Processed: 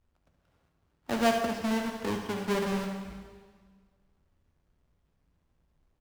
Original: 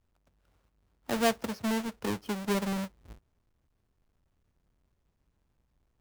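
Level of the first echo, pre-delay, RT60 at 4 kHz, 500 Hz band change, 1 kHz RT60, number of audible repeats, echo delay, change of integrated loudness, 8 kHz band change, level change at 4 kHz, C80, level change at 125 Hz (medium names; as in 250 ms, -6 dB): -10.0 dB, 4 ms, 1.6 s, +2.5 dB, 1.7 s, 1, 73 ms, +1.5 dB, -2.0 dB, +0.5 dB, 6.0 dB, +0.5 dB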